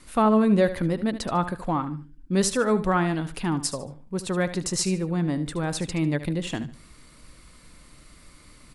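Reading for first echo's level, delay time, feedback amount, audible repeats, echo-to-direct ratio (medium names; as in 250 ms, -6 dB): -13.0 dB, 74 ms, 28%, 2, -12.5 dB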